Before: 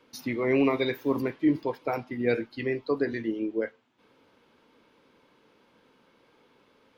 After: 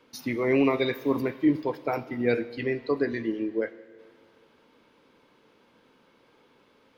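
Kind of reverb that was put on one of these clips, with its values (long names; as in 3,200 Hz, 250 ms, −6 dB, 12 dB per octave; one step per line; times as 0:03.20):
four-comb reverb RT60 2.1 s, combs from 26 ms, DRR 16 dB
level +1 dB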